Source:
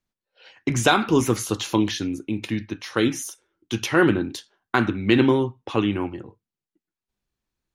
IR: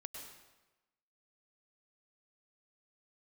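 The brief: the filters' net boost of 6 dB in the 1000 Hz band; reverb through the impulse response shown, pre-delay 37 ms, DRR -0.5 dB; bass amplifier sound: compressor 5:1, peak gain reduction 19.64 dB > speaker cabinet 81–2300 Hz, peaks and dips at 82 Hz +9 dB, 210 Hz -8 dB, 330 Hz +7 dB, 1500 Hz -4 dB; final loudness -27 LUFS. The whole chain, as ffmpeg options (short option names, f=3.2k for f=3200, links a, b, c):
-filter_complex "[0:a]equalizer=f=1k:t=o:g=8.5,asplit=2[a][b];[1:a]atrim=start_sample=2205,adelay=37[c];[b][c]afir=irnorm=-1:irlink=0,volume=4dB[d];[a][d]amix=inputs=2:normalize=0,acompressor=threshold=-29dB:ratio=5,highpass=f=81:w=0.5412,highpass=f=81:w=1.3066,equalizer=f=82:t=q:w=4:g=9,equalizer=f=210:t=q:w=4:g=-8,equalizer=f=330:t=q:w=4:g=7,equalizer=f=1.5k:t=q:w=4:g=-4,lowpass=f=2.3k:w=0.5412,lowpass=f=2.3k:w=1.3066,volume=4dB"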